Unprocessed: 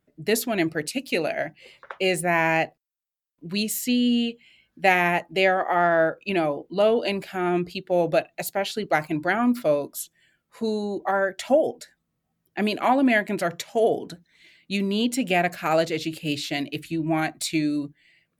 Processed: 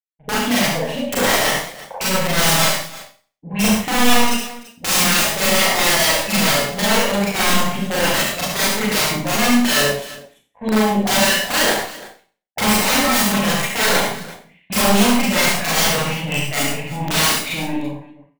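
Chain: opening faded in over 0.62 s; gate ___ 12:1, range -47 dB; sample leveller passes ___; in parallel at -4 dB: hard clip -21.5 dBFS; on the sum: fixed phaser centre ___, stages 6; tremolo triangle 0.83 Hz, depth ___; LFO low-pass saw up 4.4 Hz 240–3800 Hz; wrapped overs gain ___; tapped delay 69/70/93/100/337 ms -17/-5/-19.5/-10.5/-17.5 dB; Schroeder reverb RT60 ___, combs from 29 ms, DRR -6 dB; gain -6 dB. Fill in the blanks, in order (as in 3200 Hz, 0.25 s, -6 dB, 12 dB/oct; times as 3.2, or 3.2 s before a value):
-55 dBFS, 3, 1300 Hz, 45%, 12.5 dB, 0.41 s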